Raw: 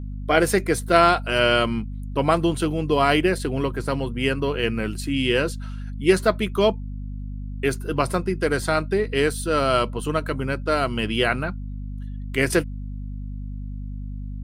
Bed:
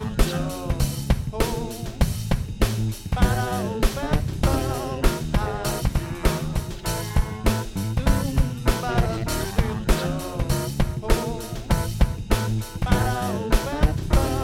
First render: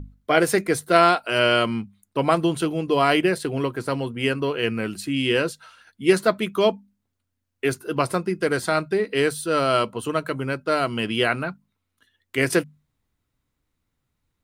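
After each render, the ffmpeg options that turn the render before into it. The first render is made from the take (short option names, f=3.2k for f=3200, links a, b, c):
-af "bandreject=f=50:t=h:w=6,bandreject=f=100:t=h:w=6,bandreject=f=150:t=h:w=6,bandreject=f=200:t=h:w=6,bandreject=f=250:t=h:w=6"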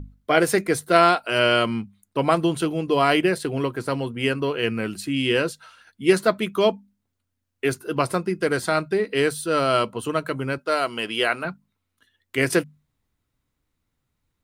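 -filter_complex "[0:a]asettb=1/sr,asplit=3[a][b][c];[a]atrim=end=10.584[d];[b]atrim=start=10.58:end=11.45,asetpts=PTS-STARTPTS,afade=t=in:d=0.004:c=qsin,afade=t=out:st=0.866:d=0.004:c=qsin,bass=f=250:g=-14,treble=f=4k:g=2[e];[c]atrim=start=11.446[f];[d][e]acrossfade=d=0.004:c1=hsin:c2=qsin[g];[g][f]acrossfade=d=0.004:c1=qsin:c2=hsin"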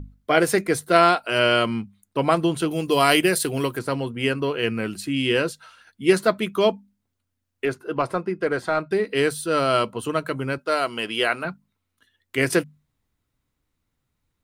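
-filter_complex "[0:a]asettb=1/sr,asplit=3[a][b][c];[a]atrim=end=2.714[d];[b]atrim=start=2.71:end=3.79,asetpts=PTS-STARTPTS,afade=t=in:d=0.004:c=qsin,afade=t=out:st=1.076:d=0.004:c=qsin,aemphasis=mode=production:type=75kf[e];[c]atrim=start=3.786[f];[d][e]acrossfade=d=0.004:c1=hsin:c2=qsin[g];[g][f]acrossfade=d=0.004:c1=qsin:c2=hsin,asettb=1/sr,asplit=3[h][i][j];[h]atrim=end=7.654[k];[i]atrim=start=7.65:end=8.91,asetpts=PTS-STARTPTS,afade=t=in:d=0.004:c=qsin,afade=t=out:st=1.256:d=0.004:c=qsin,asplit=2[l][m];[m]highpass=f=720:p=1,volume=9dB,asoftclip=type=tanh:threshold=-7.5dB[n];[l][n]amix=inputs=2:normalize=0,lowpass=f=1k:p=1,volume=-6dB[o];[j]atrim=start=8.906[p];[k][o]acrossfade=d=0.004:c1=hsin:c2=qsin[q];[q][p]acrossfade=d=0.004:c1=qsin:c2=hsin"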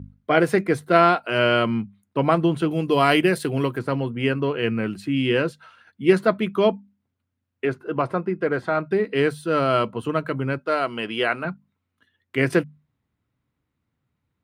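-af "highpass=96,bass=f=250:g=5,treble=f=4k:g=-13"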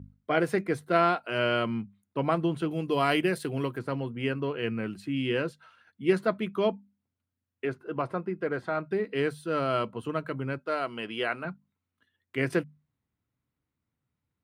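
-af "volume=-7.5dB"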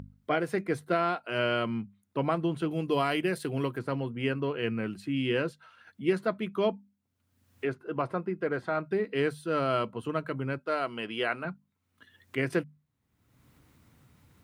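-af "alimiter=limit=-15dB:level=0:latency=1:release=449,acompressor=mode=upward:threshold=-41dB:ratio=2.5"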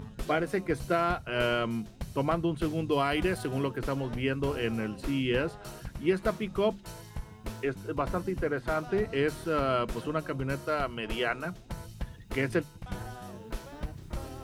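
-filter_complex "[1:a]volume=-18dB[a];[0:a][a]amix=inputs=2:normalize=0"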